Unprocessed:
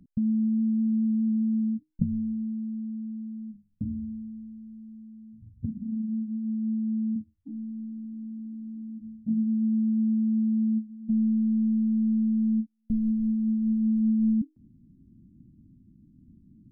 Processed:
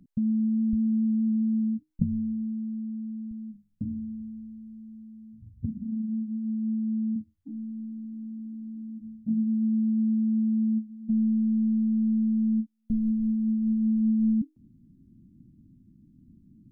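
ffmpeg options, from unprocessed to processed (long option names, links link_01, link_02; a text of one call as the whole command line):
ffmpeg -i in.wav -af "asetnsamples=nb_out_samples=441:pad=0,asendcmd='0.73 equalizer g 4;3.31 equalizer g -7;4.2 equalizer g 3.5;5.84 equalizer g -3',equalizer=frequency=62:width_type=o:width=0.9:gain=-7.5" out.wav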